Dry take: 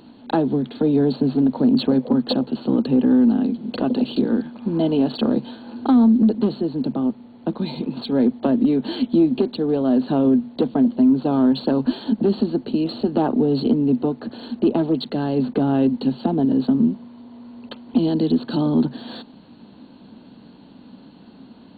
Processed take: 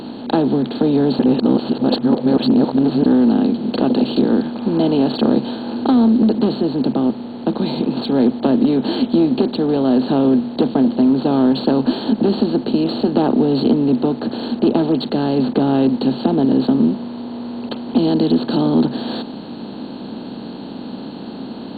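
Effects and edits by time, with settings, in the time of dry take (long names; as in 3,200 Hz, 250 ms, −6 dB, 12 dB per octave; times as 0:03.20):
0:01.19–0:03.06: reverse
whole clip: compressor on every frequency bin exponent 0.6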